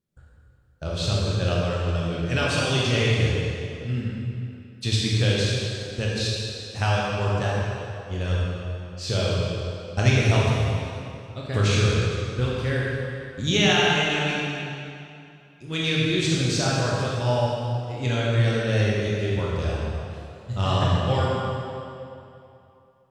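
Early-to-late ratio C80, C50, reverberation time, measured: −1.0 dB, −3.0 dB, 2.7 s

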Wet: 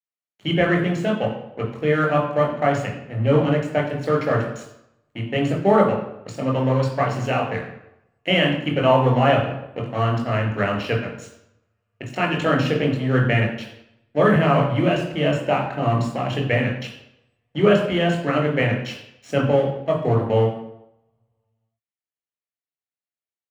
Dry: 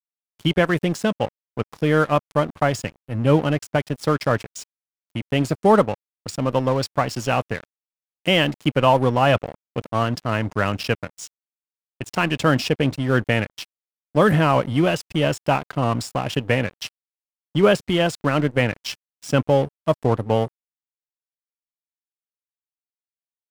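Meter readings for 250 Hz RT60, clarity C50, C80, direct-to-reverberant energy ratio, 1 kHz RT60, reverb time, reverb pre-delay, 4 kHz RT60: 0.75 s, 6.0 dB, 9.0 dB, 0.0 dB, 0.85 s, 0.85 s, 19 ms, 0.65 s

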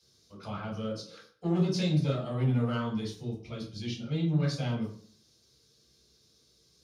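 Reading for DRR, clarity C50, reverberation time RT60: −4.0 dB, 7.5 dB, 0.50 s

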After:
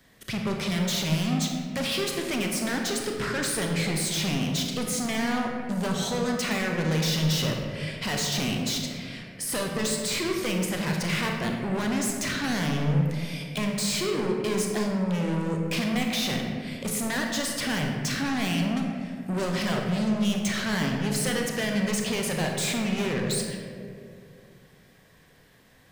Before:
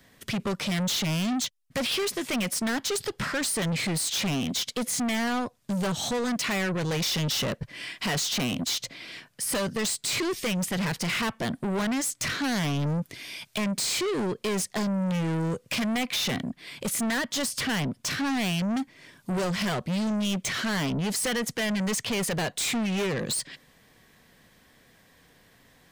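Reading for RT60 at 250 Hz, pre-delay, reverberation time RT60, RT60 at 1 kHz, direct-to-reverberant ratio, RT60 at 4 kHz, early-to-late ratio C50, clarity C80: 2.7 s, 27 ms, 2.4 s, 2.0 s, 1.0 dB, 1.2 s, 2.5 dB, 4.0 dB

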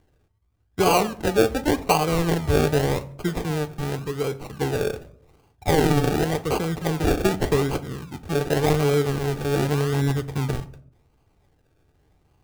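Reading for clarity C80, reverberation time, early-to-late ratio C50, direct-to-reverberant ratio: 21.5 dB, 0.65 s, 18.0 dB, 8.5 dB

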